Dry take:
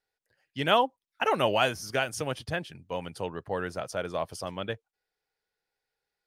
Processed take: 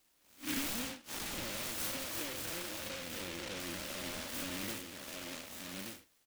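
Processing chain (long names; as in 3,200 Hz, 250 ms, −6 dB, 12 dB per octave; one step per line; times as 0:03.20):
spectrum smeared in time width 157 ms
comb filter 3.5 ms, depth 98%
single-tap delay 1,178 ms −18 dB
flanger 0.41 Hz, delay 2 ms, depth 4.4 ms, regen +69%
0:01.51–0:03.60: octave-band graphic EQ 250/500/1,000/2,000 Hz −9/+5/−10/−5 dB
mid-hump overdrive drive 26 dB, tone 3,200 Hz, clips at −15 dBFS
downward compressor 10 to 1, threshold −37 dBFS, peak gain reduction 16.5 dB
flat-topped bell 1,000 Hz −12.5 dB 2.9 octaves
short delay modulated by noise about 2,300 Hz, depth 0.33 ms
level +7 dB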